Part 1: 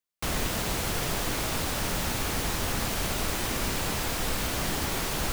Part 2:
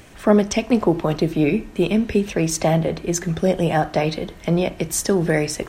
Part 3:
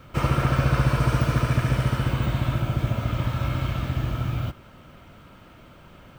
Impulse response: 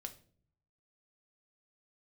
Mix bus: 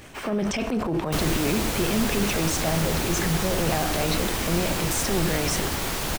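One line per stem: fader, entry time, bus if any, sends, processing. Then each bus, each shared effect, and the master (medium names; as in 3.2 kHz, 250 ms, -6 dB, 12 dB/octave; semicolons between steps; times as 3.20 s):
+2.0 dB, 0.90 s, no bus, no send, none
-0.5 dB, 0.00 s, bus A, no send, transient shaper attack -9 dB, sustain +9 dB
+1.5 dB, 0.00 s, bus A, no send, spectral gate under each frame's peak -15 dB weak; auto duck -13 dB, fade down 0.70 s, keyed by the second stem
bus A: 0.0 dB, peak limiter -18 dBFS, peak gain reduction 12.5 dB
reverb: none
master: none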